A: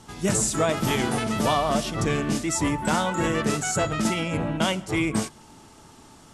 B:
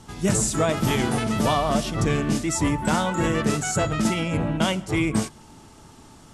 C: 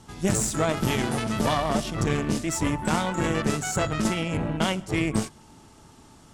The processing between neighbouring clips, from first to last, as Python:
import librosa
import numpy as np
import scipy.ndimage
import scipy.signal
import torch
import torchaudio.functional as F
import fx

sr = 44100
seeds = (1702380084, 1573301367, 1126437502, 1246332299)

y1 = fx.low_shelf(x, sr, hz=190.0, db=5.5)
y2 = fx.cheby_harmonics(y1, sr, harmonics=(4, 7), levels_db=(-16, -43), full_scale_db=-8.0)
y2 = y2 * 10.0 ** (-3.0 / 20.0)